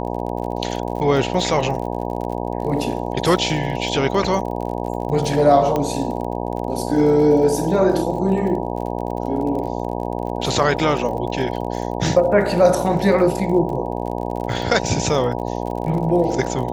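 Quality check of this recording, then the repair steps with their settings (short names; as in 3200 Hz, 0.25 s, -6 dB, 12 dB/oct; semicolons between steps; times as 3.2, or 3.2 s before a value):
buzz 60 Hz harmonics 16 -25 dBFS
crackle 42/s -29 dBFS
5.76 pop -9 dBFS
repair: de-click; de-hum 60 Hz, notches 16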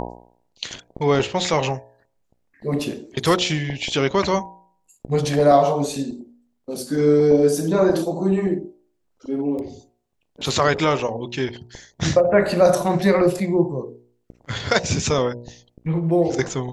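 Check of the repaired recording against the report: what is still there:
none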